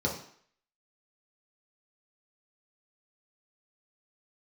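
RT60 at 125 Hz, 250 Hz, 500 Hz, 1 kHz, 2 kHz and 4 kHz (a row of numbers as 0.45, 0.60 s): 0.45, 0.50, 0.55, 0.60, 0.60, 0.55 s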